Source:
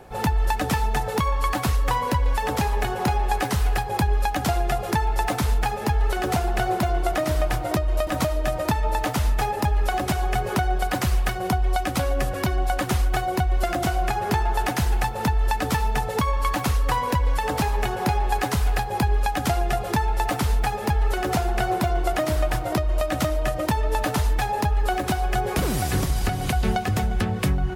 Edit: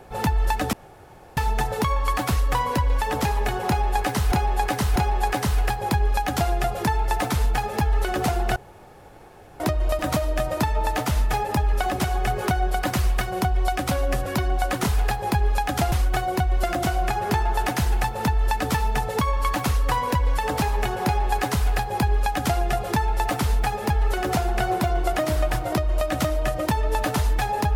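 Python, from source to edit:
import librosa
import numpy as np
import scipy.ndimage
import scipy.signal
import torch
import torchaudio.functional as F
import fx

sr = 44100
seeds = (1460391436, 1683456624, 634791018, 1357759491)

y = fx.edit(x, sr, fx.insert_room_tone(at_s=0.73, length_s=0.64),
    fx.repeat(start_s=3.04, length_s=0.64, count=3),
    fx.room_tone_fill(start_s=6.64, length_s=1.04),
    fx.duplicate(start_s=18.52, length_s=1.08, to_s=12.92), tone=tone)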